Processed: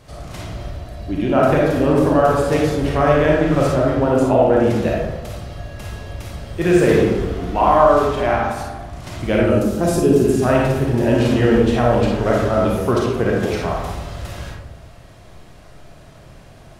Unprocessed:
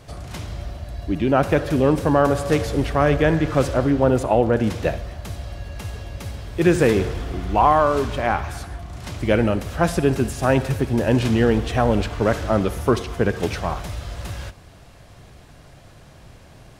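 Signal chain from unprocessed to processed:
0:09.50–0:10.24: drawn EQ curve 160 Hz 0 dB, 360 Hz +6 dB, 800 Hz −6 dB, 1,900 Hz −9 dB, 7,000 Hz +5 dB
comb and all-pass reverb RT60 1.1 s, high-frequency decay 0.35×, pre-delay 5 ms, DRR −3 dB
level −2 dB

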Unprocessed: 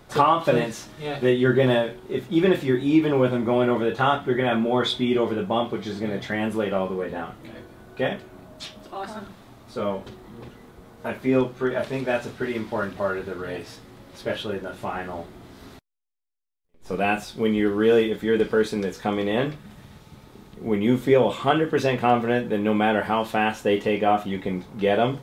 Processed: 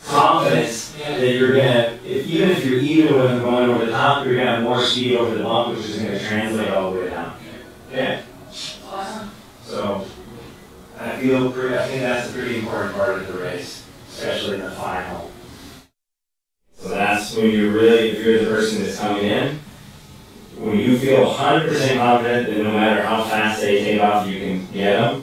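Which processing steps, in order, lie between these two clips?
random phases in long frames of 200 ms
parametric band 7,800 Hz +8 dB 2.6 octaves
level +4 dB

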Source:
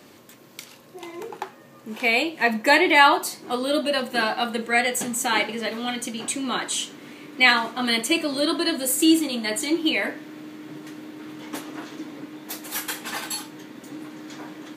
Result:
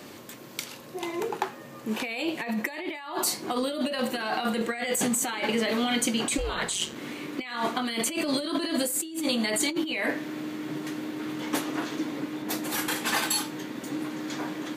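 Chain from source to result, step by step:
compressor whose output falls as the input rises −29 dBFS, ratio −1
0:06.37–0:06.94: ring modulation 250 Hz → 63 Hz
0:12.42–0:12.96: spectral tilt −1.5 dB per octave

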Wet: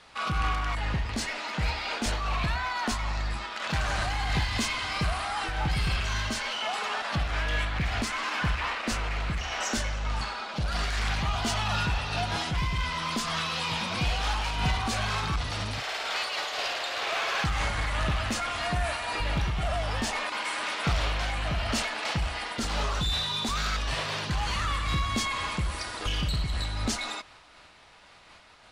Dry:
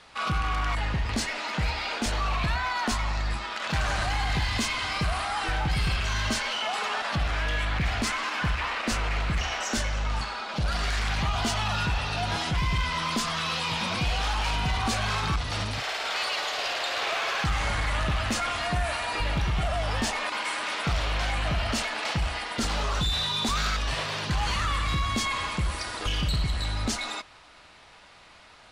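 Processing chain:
amplitude modulation by smooth noise, depth 55%
level +1.5 dB

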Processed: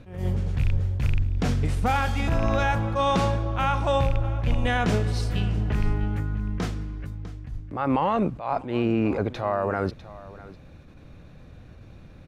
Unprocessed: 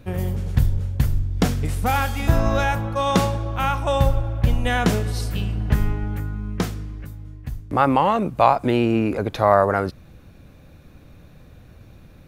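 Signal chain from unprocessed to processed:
loose part that buzzes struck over −15 dBFS, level −19 dBFS
high-frequency loss of the air 60 metres
brickwall limiter −13.5 dBFS, peak gain reduction 11 dB
0:07.10–0:09.34: high-shelf EQ 6,300 Hz −5.5 dB
single-tap delay 650 ms −18.5 dB
level that may rise only so fast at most 110 dB per second

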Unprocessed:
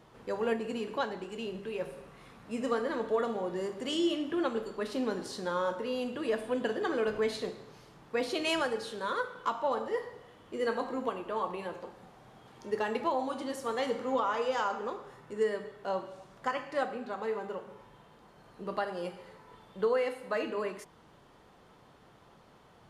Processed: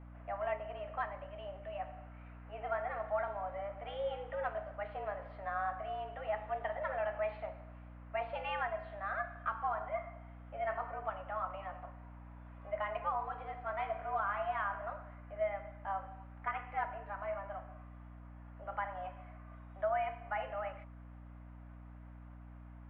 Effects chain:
single-sideband voice off tune +200 Hz 350–2,400 Hz
mains hum 60 Hz, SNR 11 dB
level −5 dB

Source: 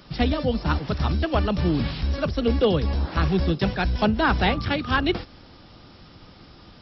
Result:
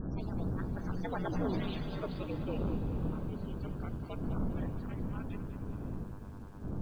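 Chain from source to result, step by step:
source passing by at 0:01.51, 53 m/s, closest 7.3 metres
wind on the microphone 140 Hz −33 dBFS
mains-hum notches 60/120/180/240/300 Hz
in parallel at −2 dB: downward compressor 16 to 1, threshold −37 dBFS, peak gain reduction 19.5 dB
on the sum: soft clipping −27.5 dBFS, distortion −8 dB
hum with harmonics 100 Hz, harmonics 16, −56 dBFS −2 dB per octave
ring modulation 95 Hz
spectral peaks only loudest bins 64
feedback delay with all-pass diffusion 545 ms, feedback 47%, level −13 dB
on a send at −17.5 dB: convolution reverb RT60 0.45 s, pre-delay 4 ms
on the sum: feedback echo at a low word length 199 ms, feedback 55%, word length 10 bits, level −10 dB

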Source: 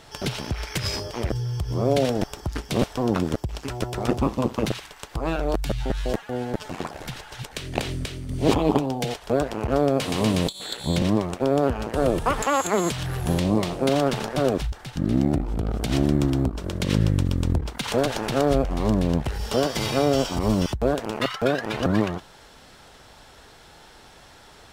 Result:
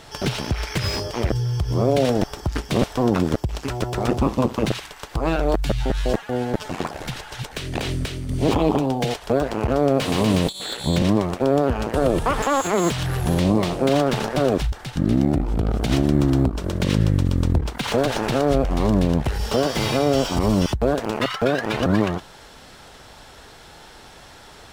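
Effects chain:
brickwall limiter −13 dBFS, peak gain reduction 7.5 dB
slew-rate limiting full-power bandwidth 130 Hz
level +4.5 dB

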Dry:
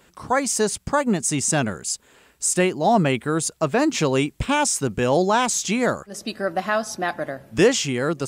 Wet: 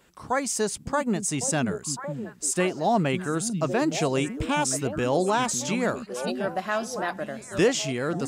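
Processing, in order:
echo through a band-pass that steps 554 ms, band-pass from 190 Hz, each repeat 1.4 octaves, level −3.5 dB
level −5 dB

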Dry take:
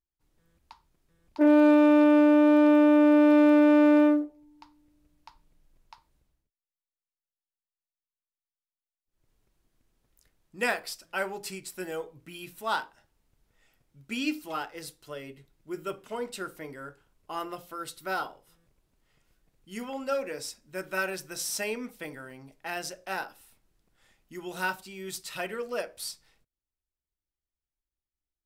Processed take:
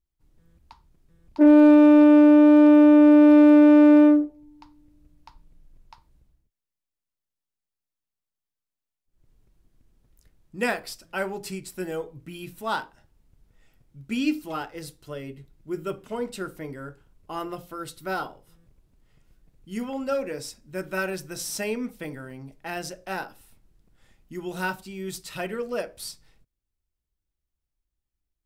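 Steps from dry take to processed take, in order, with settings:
low-shelf EQ 330 Hz +11.5 dB

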